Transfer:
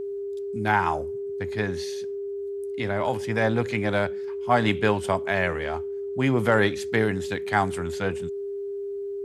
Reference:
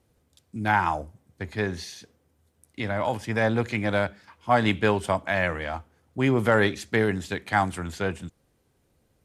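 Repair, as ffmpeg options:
-af "bandreject=f=400:w=30"

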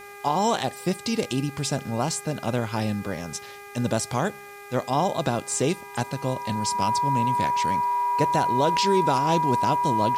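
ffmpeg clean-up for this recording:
-af "bandreject=f=405.3:t=h:w=4,bandreject=f=810.6:t=h:w=4,bandreject=f=1.2159k:t=h:w=4,bandreject=f=1.6212k:t=h:w=4,bandreject=f=2.0265k:t=h:w=4,bandreject=f=2.4318k:t=h:w=4,bandreject=f=970:w=30,agate=range=-21dB:threshold=-34dB"

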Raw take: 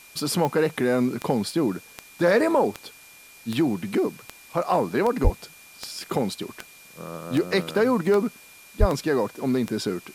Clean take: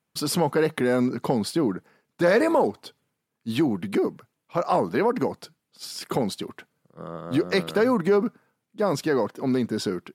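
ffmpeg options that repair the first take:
-filter_complex "[0:a]adeclick=t=4,bandreject=f=2.4k:w=30,asplit=3[a][b][c];[a]afade=t=out:st=5.23:d=0.02[d];[b]highpass=f=140:w=0.5412,highpass=f=140:w=1.3066,afade=t=in:st=5.23:d=0.02,afade=t=out:st=5.35:d=0.02[e];[c]afade=t=in:st=5.35:d=0.02[f];[d][e][f]amix=inputs=3:normalize=0,asplit=3[g][h][i];[g]afade=t=out:st=8.79:d=0.02[j];[h]highpass=f=140:w=0.5412,highpass=f=140:w=1.3066,afade=t=in:st=8.79:d=0.02,afade=t=out:st=8.91:d=0.02[k];[i]afade=t=in:st=8.91:d=0.02[l];[j][k][l]amix=inputs=3:normalize=0,afwtdn=0.0035"

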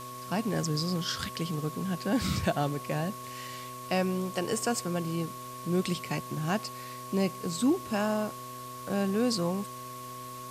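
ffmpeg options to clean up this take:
-af "adeclick=t=4,bandreject=f=125.8:t=h:w=4,bandreject=f=251.6:t=h:w=4,bandreject=f=377.4:t=h:w=4,bandreject=f=503.2:t=h:w=4,bandreject=f=629:t=h:w=4,bandreject=f=1.1k:w=30,afwtdn=0.004"

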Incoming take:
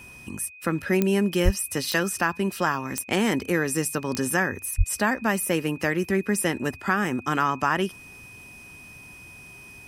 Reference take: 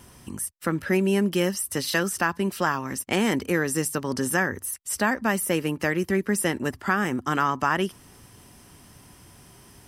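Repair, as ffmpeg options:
-filter_complex "[0:a]adeclick=t=4,bandreject=f=2.5k:w=30,asplit=3[a][b][c];[a]afade=t=out:st=1.44:d=0.02[d];[b]highpass=f=140:w=0.5412,highpass=f=140:w=1.3066,afade=t=in:st=1.44:d=0.02,afade=t=out:st=1.56:d=0.02[e];[c]afade=t=in:st=1.56:d=0.02[f];[d][e][f]amix=inputs=3:normalize=0,asplit=3[g][h][i];[g]afade=t=out:st=4.77:d=0.02[j];[h]highpass=f=140:w=0.5412,highpass=f=140:w=1.3066,afade=t=in:st=4.77:d=0.02,afade=t=out:st=4.89:d=0.02[k];[i]afade=t=in:st=4.89:d=0.02[l];[j][k][l]amix=inputs=3:normalize=0"

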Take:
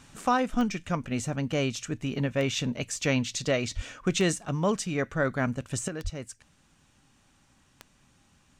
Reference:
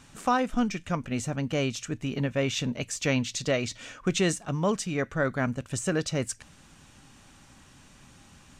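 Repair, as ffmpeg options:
-filter_complex "[0:a]adeclick=t=4,asplit=3[a][b][c];[a]afade=t=out:st=3.75:d=0.02[d];[b]highpass=f=140:w=0.5412,highpass=f=140:w=1.3066,afade=t=in:st=3.75:d=0.02,afade=t=out:st=3.87:d=0.02[e];[c]afade=t=in:st=3.87:d=0.02[f];[d][e][f]amix=inputs=3:normalize=0,asplit=3[g][h][i];[g]afade=t=out:st=6.03:d=0.02[j];[h]highpass=f=140:w=0.5412,highpass=f=140:w=1.3066,afade=t=in:st=6.03:d=0.02,afade=t=out:st=6.15:d=0.02[k];[i]afade=t=in:st=6.15:d=0.02[l];[j][k][l]amix=inputs=3:normalize=0,asetnsamples=n=441:p=0,asendcmd='5.88 volume volume 9.5dB',volume=0dB"

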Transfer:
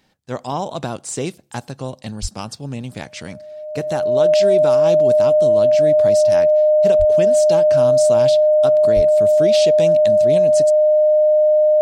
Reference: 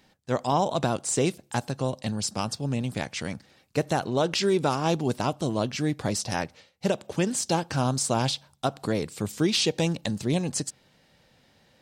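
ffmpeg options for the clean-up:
-filter_complex "[0:a]bandreject=f=610:w=30,asplit=3[a][b][c];[a]afade=t=out:st=2.21:d=0.02[d];[b]highpass=f=140:w=0.5412,highpass=f=140:w=1.3066,afade=t=in:st=2.21:d=0.02,afade=t=out:st=2.33:d=0.02[e];[c]afade=t=in:st=2.33:d=0.02[f];[d][e][f]amix=inputs=3:normalize=0,asplit=3[g][h][i];[g]afade=t=out:st=6.98:d=0.02[j];[h]highpass=f=140:w=0.5412,highpass=f=140:w=1.3066,afade=t=in:st=6.98:d=0.02,afade=t=out:st=7.1:d=0.02[k];[i]afade=t=in:st=7.1:d=0.02[l];[j][k][l]amix=inputs=3:normalize=0,asplit=3[m][n][o];[m]afade=t=out:st=8.95:d=0.02[p];[n]highpass=f=140:w=0.5412,highpass=f=140:w=1.3066,afade=t=in:st=8.95:d=0.02,afade=t=out:st=9.07:d=0.02[q];[o]afade=t=in:st=9.07:d=0.02[r];[p][q][r]amix=inputs=3:normalize=0"

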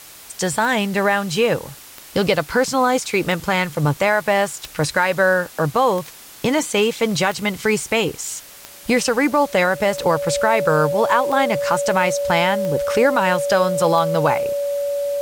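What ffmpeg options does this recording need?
-af "adeclick=t=4,bandreject=f=570:w=30,afwtdn=0.01"

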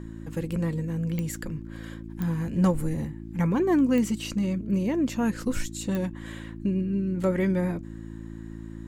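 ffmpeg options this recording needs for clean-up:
-af "adeclick=t=4,bandreject=f=55.3:t=h:w=4,bandreject=f=110.6:t=h:w=4,bandreject=f=165.9:t=h:w=4,bandreject=f=221.2:t=h:w=4,bandreject=f=276.5:t=h:w=4,bandreject=f=331.8:t=h:w=4"

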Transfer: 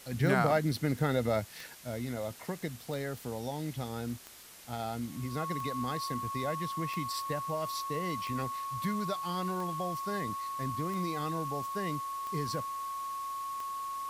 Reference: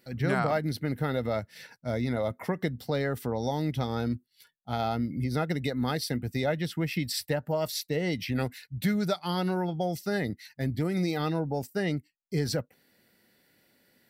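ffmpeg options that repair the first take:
-af "adeclick=t=4,bandreject=f=1.1k:w=30,afwtdn=0.0028,asetnsamples=n=441:p=0,asendcmd='1.75 volume volume 7.5dB',volume=0dB"

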